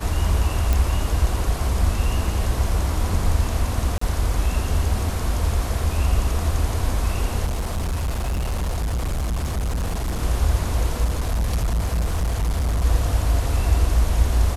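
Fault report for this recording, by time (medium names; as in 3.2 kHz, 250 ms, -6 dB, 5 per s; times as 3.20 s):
0.73 s: pop
3.98–4.01 s: dropout 34 ms
7.45–10.23 s: clipped -20.5 dBFS
11.04–12.85 s: clipped -18 dBFS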